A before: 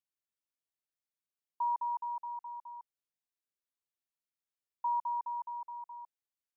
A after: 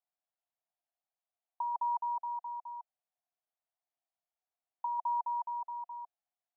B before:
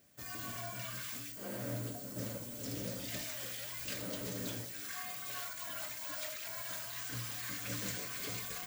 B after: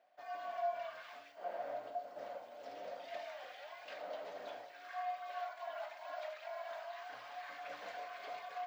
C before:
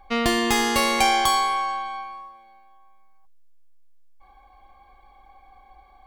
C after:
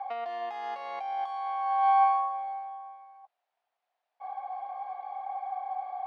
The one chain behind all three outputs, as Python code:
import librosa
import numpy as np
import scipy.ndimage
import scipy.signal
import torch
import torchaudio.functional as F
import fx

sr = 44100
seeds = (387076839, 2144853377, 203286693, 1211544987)

y = fx.over_compress(x, sr, threshold_db=-34.0, ratio=-1.0)
y = fx.highpass_res(y, sr, hz=710.0, q=7.5)
y = fx.air_absorb(y, sr, metres=300.0)
y = y * librosa.db_to_amplitude(-3.5)